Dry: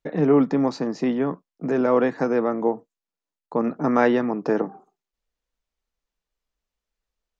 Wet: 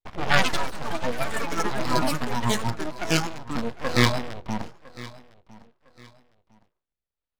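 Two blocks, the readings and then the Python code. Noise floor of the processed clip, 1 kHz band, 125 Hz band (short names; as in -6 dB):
under -85 dBFS, +0.5 dB, +4.0 dB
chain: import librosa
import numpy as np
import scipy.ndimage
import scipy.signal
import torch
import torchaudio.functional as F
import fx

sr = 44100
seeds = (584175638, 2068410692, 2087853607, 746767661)

p1 = fx.cycle_switch(x, sr, every=3, mode='inverted')
p2 = fx.rotary_switch(p1, sr, hz=8.0, then_hz=0.85, switch_at_s=2.91)
p3 = scipy.signal.sosfilt(scipy.signal.cheby1(8, 1.0, 4500.0, 'lowpass', fs=sr, output='sos'), p2)
p4 = fx.hum_notches(p3, sr, base_hz=60, count=4)
p5 = np.abs(p4)
p6 = fx.noise_reduce_blind(p5, sr, reduce_db=10)
p7 = p6 + fx.echo_feedback(p6, sr, ms=1006, feedback_pct=30, wet_db=-19.5, dry=0)
p8 = fx.echo_pitch(p7, sr, ms=135, semitones=5, count=3, db_per_echo=-3.0)
y = p8 * librosa.db_to_amplitude(5.5)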